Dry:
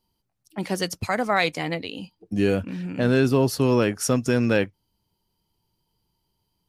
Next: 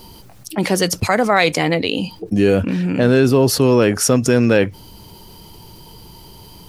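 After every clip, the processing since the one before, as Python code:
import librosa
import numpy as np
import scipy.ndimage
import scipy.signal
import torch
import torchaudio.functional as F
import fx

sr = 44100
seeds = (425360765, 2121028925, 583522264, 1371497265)

y = fx.peak_eq(x, sr, hz=450.0, db=3.0, octaves=0.77)
y = fx.env_flatten(y, sr, amount_pct=50)
y = y * librosa.db_to_amplitude(4.0)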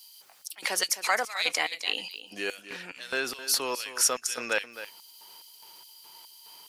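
y = fx.filter_lfo_highpass(x, sr, shape='square', hz=2.4, low_hz=980.0, high_hz=3700.0, q=0.71)
y = y + 10.0 ** (-13.0 / 20.0) * np.pad(y, (int(262 * sr / 1000.0), 0))[:len(y)]
y = y * librosa.db_to_amplitude(-4.5)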